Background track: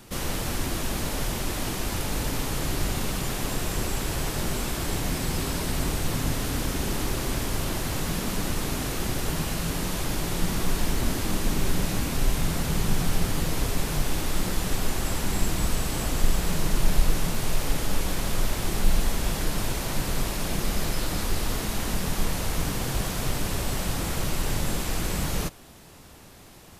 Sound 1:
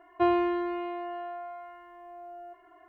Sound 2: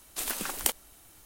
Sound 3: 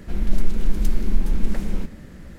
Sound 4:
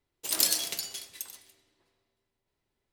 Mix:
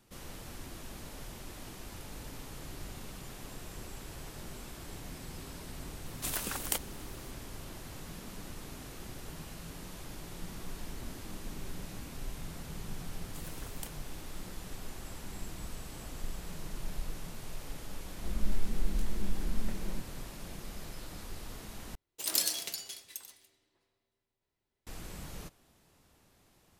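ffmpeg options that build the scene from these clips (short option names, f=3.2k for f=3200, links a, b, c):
-filter_complex "[2:a]asplit=2[a][b];[0:a]volume=-17dB[c];[a]alimiter=limit=-9.5dB:level=0:latency=1:release=25[d];[3:a]flanger=delay=19.5:depth=7.7:speed=0.96[e];[c]asplit=2[f][g];[f]atrim=end=21.954[h];[4:a]atrim=end=2.92,asetpts=PTS-STARTPTS,volume=-4.5dB[i];[g]atrim=start=24.866[j];[d]atrim=end=1.25,asetpts=PTS-STARTPTS,volume=-3dB,afade=t=in:d=0.004:c=hsin,afade=t=out:st=1.246:d=0.004:c=hsin,adelay=6060[k];[b]atrim=end=1.25,asetpts=PTS-STARTPTS,volume=-18dB,afade=t=in:d=0.004:c=hsin,afade=t=out:st=1.246:d=0.004:c=hsin,adelay=13170[l];[e]atrim=end=2.38,asetpts=PTS-STARTPTS,volume=-8.5dB,afade=t=in:d=0.004:c=hsin,afade=t=out:st=2.376:d=0.004:c=hsin,adelay=18140[m];[h][i]acrossfade=d=0.004:c1=hsin:c2=hsin[n];[n][j]acrossfade=d=0.004:c1=hsin:c2=hsin[o];[o][k][l][m]amix=inputs=4:normalize=0"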